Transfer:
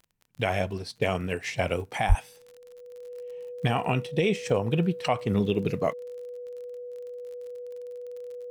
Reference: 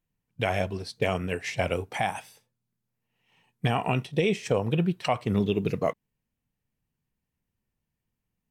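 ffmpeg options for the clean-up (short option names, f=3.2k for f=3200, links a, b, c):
-filter_complex "[0:a]adeclick=t=4,bandreject=f=490:w=30,asplit=3[a][b][c];[a]afade=t=out:st=2.08:d=0.02[d];[b]highpass=f=140:w=0.5412,highpass=f=140:w=1.3066,afade=t=in:st=2.08:d=0.02,afade=t=out:st=2.2:d=0.02[e];[c]afade=t=in:st=2.2:d=0.02[f];[d][e][f]amix=inputs=3:normalize=0"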